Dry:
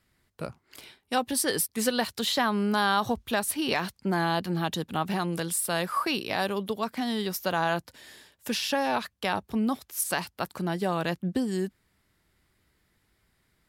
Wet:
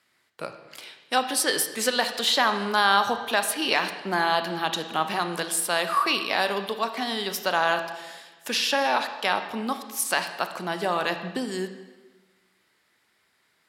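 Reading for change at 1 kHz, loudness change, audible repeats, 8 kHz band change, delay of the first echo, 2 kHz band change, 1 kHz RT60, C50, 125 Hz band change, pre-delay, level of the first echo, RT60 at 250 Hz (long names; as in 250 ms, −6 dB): +5.0 dB, +3.5 dB, no echo audible, +3.0 dB, no echo audible, +6.0 dB, 1.2 s, 9.0 dB, −7.0 dB, 25 ms, no echo audible, 1.4 s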